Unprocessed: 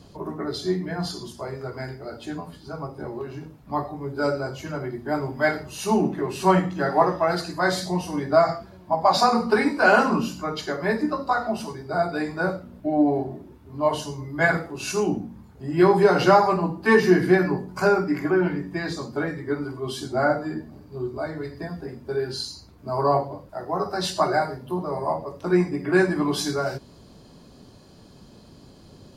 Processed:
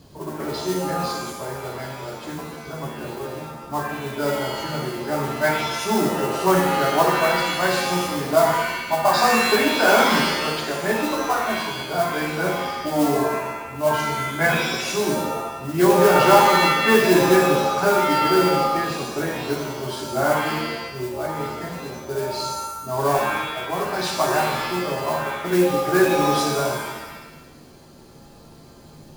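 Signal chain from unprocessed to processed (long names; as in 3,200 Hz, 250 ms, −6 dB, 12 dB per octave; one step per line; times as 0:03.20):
noise that follows the level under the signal 16 dB
reverb with rising layers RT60 1 s, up +7 semitones, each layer −2 dB, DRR 3 dB
level −1 dB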